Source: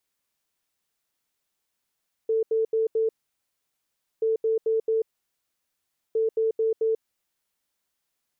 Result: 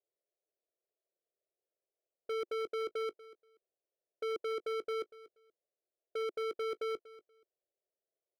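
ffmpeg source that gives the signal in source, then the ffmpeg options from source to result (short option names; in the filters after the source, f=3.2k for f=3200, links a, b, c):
-f lavfi -i "aevalsrc='0.1*sin(2*PI*445*t)*clip(min(mod(mod(t,1.93),0.22),0.14-mod(mod(t,1.93),0.22))/0.005,0,1)*lt(mod(t,1.93),0.88)':d=5.79:s=44100"
-af "asuperpass=centerf=490:order=8:qfactor=1.5,volume=34.5dB,asoftclip=hard,volume=-34.5dB,aecho=1:1:239|478:0.126|0.0227"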